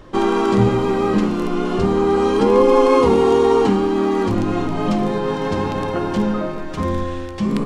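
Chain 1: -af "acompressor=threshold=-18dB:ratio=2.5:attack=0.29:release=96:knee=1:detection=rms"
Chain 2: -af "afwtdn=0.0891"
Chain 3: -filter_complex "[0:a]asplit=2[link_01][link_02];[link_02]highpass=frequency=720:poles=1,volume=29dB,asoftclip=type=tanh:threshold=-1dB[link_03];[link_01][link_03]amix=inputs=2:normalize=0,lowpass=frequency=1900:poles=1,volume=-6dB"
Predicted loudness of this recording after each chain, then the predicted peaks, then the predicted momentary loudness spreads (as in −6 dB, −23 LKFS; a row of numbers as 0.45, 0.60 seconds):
−23.0, −18.0, −9.5 LKFS; −11.0, −1.5, −1.5 dBFS; 5, 10, 4 LU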